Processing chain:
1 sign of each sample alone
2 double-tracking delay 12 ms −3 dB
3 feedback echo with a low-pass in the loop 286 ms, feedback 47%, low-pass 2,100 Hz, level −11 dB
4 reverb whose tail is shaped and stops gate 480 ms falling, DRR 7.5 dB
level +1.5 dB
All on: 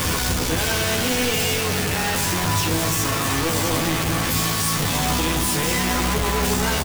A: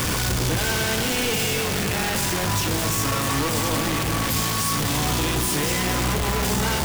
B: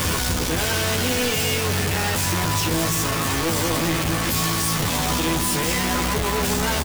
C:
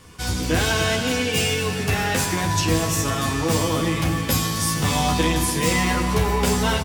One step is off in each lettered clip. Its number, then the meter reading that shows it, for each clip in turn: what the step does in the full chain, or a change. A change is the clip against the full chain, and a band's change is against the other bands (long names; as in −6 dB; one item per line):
2, change in integrated loudness −1.5 LU
4, echo-to-direct ratio −6.0 dB to −12.0 dB
1, distortion level −2 dB